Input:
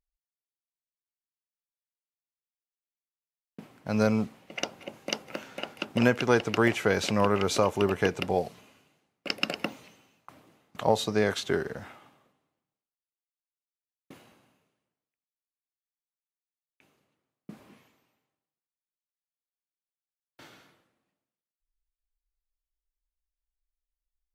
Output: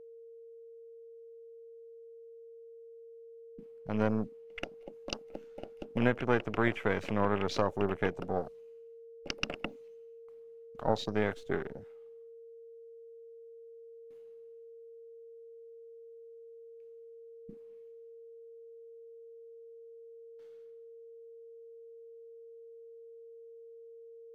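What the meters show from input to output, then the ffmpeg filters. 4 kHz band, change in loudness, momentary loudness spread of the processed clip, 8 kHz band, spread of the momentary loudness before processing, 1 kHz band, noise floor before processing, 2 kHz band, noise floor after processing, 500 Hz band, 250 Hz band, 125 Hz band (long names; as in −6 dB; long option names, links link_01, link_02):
−9.5 dB, −6.0 dB, 21 LU, −13.5 dB, 15 LU, −5.0 dB, below −85 dBFS, −6.0 dB, −52 dBFS, −5.5 dB, −5.5 dB, −4.5 dB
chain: -af "aeval=exprs='if(lt(val(0),0),0.447*val(0),val(0))':channel_layout=same,afwtdn=0.0141,aeval=exprs='val(0)+0.00562*sin(2*PI*460*n/s)':channel_layout=same,volume=-3.5dB"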